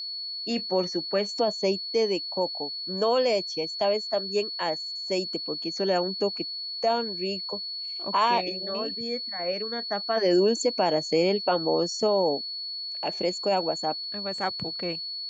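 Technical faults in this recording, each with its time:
tone 4400 Hz -32 dBFS

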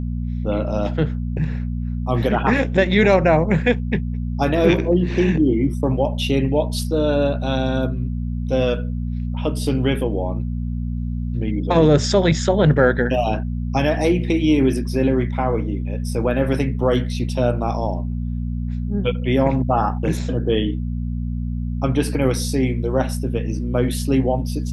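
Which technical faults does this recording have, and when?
hum 60 Hz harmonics 4 -24 dBFS

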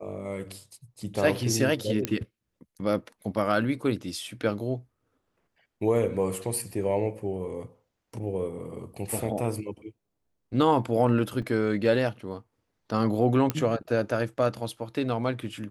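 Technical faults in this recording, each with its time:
2.05 pop -10 dBFS
11.42 gap 4.3 ms
13.5 pop -11 dBFS

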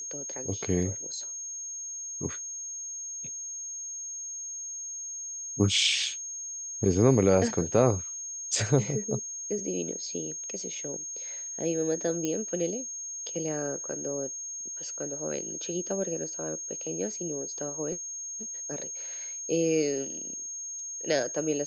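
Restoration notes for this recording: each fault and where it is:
tone 6500 Hz -35 dBFS
12.25 pop -17 dBFS

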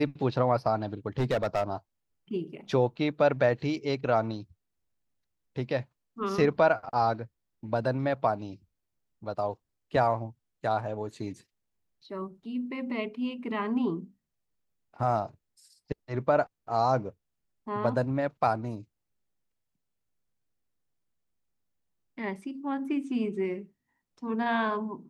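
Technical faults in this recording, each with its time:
1.19–1.63 clipped -22 dBFS

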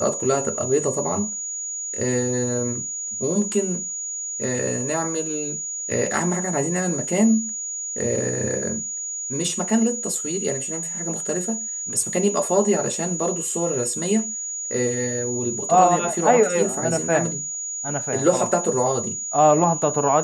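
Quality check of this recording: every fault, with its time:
tone 6800 Hz -27 dBFS

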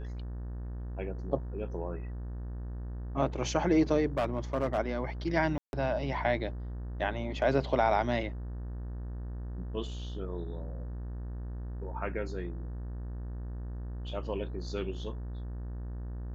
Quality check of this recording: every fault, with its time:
buzz 60 Hz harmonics 31 -38 dBFS
4.17–4.79 clipped -24.5 dBFS
5.58–5.73 gap 0.151 s

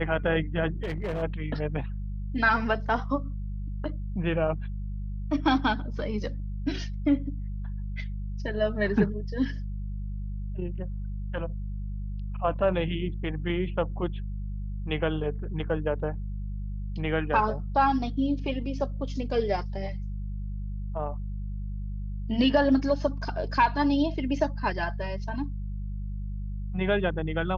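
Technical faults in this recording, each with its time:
hum 50 Hz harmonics 4 -33 dBFS
0.83–1.23 clipped -26.5 dBFS

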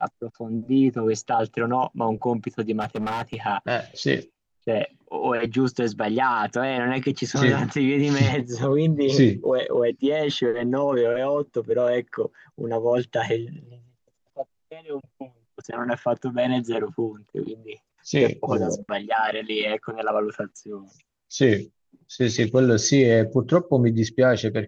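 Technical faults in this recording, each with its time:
2.8–3.35 clipped -24 dBFS

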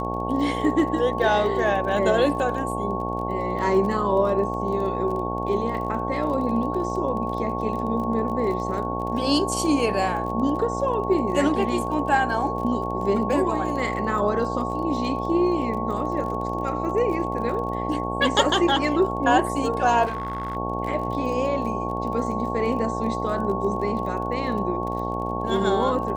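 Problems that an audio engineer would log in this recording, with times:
buzz 60 Hz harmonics 15 -29 dBFS
crackle 29/s -32 dBFS
tone 1100 Hz -29 dBFS
20.05–20.57 clipped -24 dBFS

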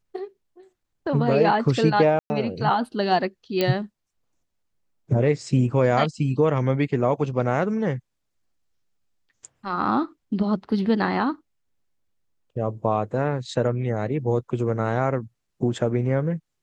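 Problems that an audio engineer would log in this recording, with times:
2.19–2.3 gap 0.11 s
3.61 pop -9 dBFS

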